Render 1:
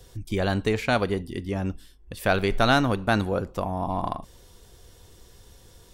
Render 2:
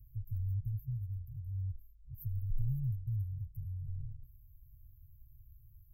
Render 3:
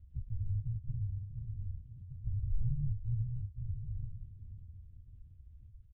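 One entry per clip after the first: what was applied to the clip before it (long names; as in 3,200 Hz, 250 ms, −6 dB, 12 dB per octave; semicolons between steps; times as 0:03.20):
brick-wall band-stop 140–12,000 Hz; level −4.5 dB
repeating echo 534 ms, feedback 43%, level −10 dB; linear-prediction vocoder at 8 kHz whisper; level +1 dB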